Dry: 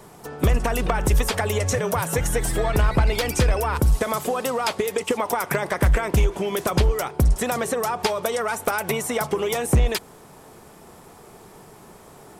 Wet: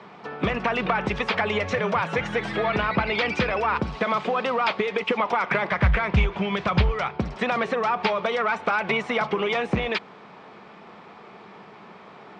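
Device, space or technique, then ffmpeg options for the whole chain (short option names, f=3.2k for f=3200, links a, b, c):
overdrive pedal into a guitar cabinet: -filter_complex "[0:a]asplit=2[a][b];[b]highpass=f=720:p=1,volume=11dB,asoftclip=type=tanh:threshold=-10.5dB[c];[a][c]amix=inputs=2:normalize=0,lowpass=f=6.3k:p=1,volume=-6dB,highpass=97,equalizer=f=200:t=q:w=4:g=10,equalizer=f=1.2k:t=q:w=4:g=3,equalizer=f=2.3k:t=q:w=4:g=5,lowpass=f=4k:w=0.5412,lowpass=f=4k:w=1.3066,asplit=3[d][e][f];[d]afade=t=out:st=5.7:d=0.02[g];[e]asubboost=boost=8.5:cutoff=100,afade=t=in:st=5.7:d=0.02,afade=t=out:st=7.17:d=0.02[h];[f]afade=t=in:st=7.17:d=0.02[i];[g][h][i]amix=inputs=3:normalize=0,volume=-3dB"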